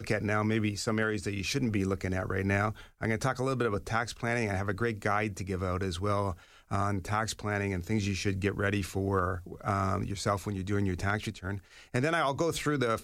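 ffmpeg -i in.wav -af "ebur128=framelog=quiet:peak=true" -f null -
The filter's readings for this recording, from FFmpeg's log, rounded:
Integrated loudness:
  I:         -31.3 LUFS
  Threshold: -41.3 LUFS
Loudness range:
  LRA:         1.3 LU
  Threshold: -51.6 LUFS
  LRA low:   -32.2 LUFS
  LRA high:  -30.9 LUFS
True peak:
  Peak:      -16.2 dBFS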